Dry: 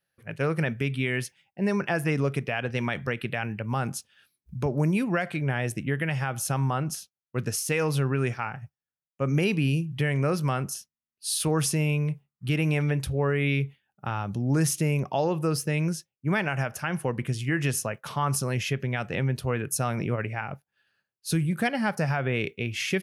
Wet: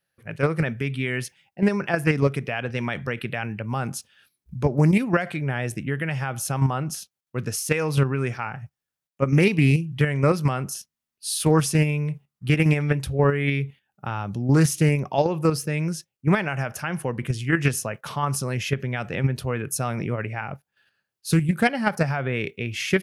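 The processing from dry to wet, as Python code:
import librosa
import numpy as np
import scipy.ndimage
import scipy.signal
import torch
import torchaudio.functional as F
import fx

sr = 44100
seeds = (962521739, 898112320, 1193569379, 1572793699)

p1 = fx.level_steps(x, sr, step_db=24)
p2 = x + (p1 * 10.0 ** (2.5 / 20.0))
y = fx.doppler_dist(p2, sr, depth_ms=0.14)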